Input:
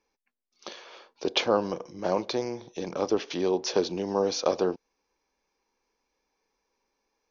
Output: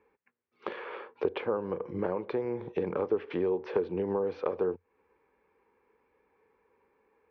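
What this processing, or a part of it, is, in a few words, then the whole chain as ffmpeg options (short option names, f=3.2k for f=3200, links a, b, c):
bass amplifier: -af "acompressor=threshold=-38dB:ratio=6,highpass=71,equalizer=f=88:t=q:w=4:g=10,equalizer=f=280:t=q:w=4:g=-3,equalizer=f=440:t=q:w=4:g=7,equalizer=f=670:t=q:w=4:g=-8,lowpass=f=2.2k:w=0.5412,lowpass=f=2.2k:w=1.3066,volume=9dB"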